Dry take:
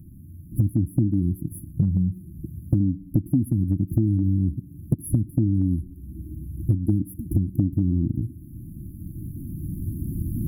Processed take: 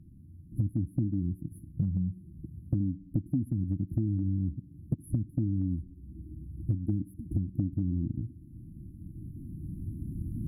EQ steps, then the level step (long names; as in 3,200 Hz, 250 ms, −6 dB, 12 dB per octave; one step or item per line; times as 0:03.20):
notch filter 910 Hz, Q 8.6
dynamic equaliser 380 Hz, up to −5 dB, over −47 dBFS, Q 5.1
high-frequency loss of the air 59 metres
−8.0 dB